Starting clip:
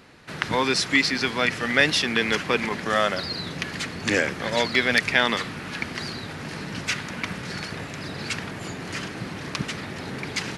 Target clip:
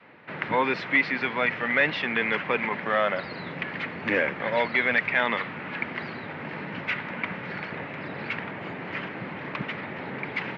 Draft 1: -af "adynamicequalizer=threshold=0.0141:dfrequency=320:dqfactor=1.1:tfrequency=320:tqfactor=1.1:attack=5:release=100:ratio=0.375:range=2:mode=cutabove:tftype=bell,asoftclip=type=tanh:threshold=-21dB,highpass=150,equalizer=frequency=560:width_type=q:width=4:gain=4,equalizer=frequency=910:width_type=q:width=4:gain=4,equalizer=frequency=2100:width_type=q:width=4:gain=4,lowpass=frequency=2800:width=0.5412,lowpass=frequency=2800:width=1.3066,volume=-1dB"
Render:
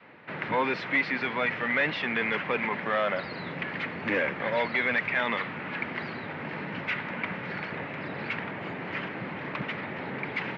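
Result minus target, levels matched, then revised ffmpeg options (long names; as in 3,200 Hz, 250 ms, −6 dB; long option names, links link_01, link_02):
soft clipping: distortion +6 dB
-af "adynamicequalizer=threshold=0.0141:dfrequency=320:dqfactor=1.1:tfrequency=320:tqfactor=1.1:attack=5:release=100:ratio=0.375:range=2:mode=cutabove:tftype=bell,asoftclip=type=tanh:threshold=-14dB,highpass=150,equalizer=frequency=560:width_type=q:width=4:gain=4,equalizer=frequency=910:width_type=q:width=4:gain=4,equalizer=frequency=2100:width_type=q:width=4:gain=4,lowpass=frequency=2800:width=0.5412,lowpass=frequency=2800:width=1.3066,volume=-1dB"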